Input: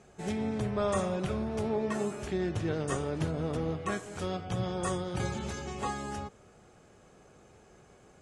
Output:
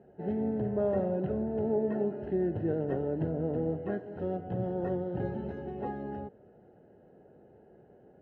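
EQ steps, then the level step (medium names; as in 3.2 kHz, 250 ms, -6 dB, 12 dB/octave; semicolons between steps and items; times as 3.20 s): boxcar filter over 38 samples; high-pass 360 Hz 6 dB/octave; distance through air 350 m; +8.0 dB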